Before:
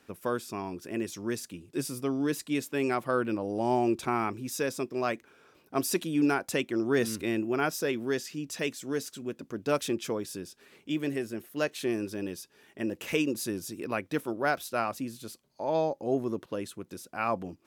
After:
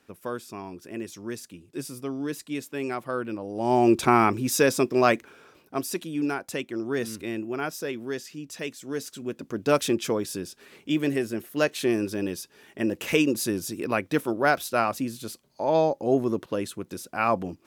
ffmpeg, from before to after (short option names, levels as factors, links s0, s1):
-af "volume=7.94,afade=t=in:st=3.54:d=0.49:silence=0.251189,afade=t=out:st=5.14:d=0.7:silence=0.251189,afade=t=in:st=8.78:d=0.89:silence=0.398107"